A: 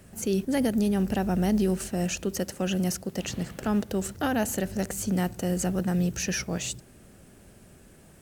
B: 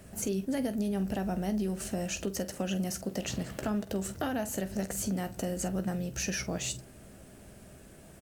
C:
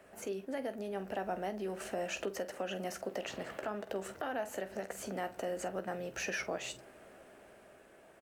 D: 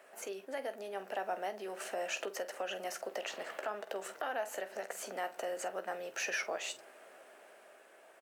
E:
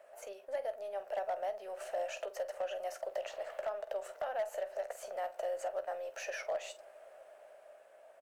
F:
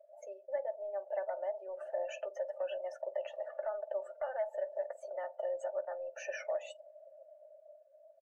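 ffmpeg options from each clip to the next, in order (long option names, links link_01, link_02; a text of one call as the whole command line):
ffmpeg -i in.wav -filter_complex "[0:a]equalizer=frequency=640:width_type=o:width=0.22:gain=6,acompressor=threshold=-30dB:ratio=6,asplit=2[link_01][link_02];[link_02]aecho=0:1:15|47:0.299|0.2[link_03];[link_01][link_03]amix=inputs=2:normalize=0" out.wav
ffmpeg -i in.wav -filter_complex "[0:a]acrossover=split=360 2800:gain=0.0891 1 0.2[link_01][link_02][link_03];[link_01][link_02][link_03]amix=inputs=3:normalize=0,dynaudnorm=framelen=290:gausssize=9:maxgain=4dB,alimiter=level_in=2.5dB:limit=-24dB:level=0:latency=1:release=258,volume=-2.5dB" out.wav
ffmpeg -i in.wav -af "highpass=520,volume=2dB" out.wav
ffmpeg -i in.wav -af "aeval=exprs='val(0)+0.000891*(sin(2*PI*60*n/s)+sin(2*PI*2*60*n/s)/2+sin(2*PI*3*60*n/s)/3+sin(2*PI*4*60*n/s)/4+sin(2*PI*5*60*n/s)/5)':channel_layout=same,highpass=frequency=590:width_type=q:width=4.9,aeval=exprs='0.0841*(cos(1*acos(clip(val(0)/0.0841,-1,1)))-cos(1*PI/2))+0.00075*(cos(8*acos(clip(val(0)/0.0841,-1,1)))-cos(8*PI/2))':channel_layout=same,volume=-8dB" out.wav
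ffmpeg -i in.wav -af "afftdn=noise_reduction=28:noise_floor=-47,aecho=1:1:3.4:0.58,volume=-2dB" out.wav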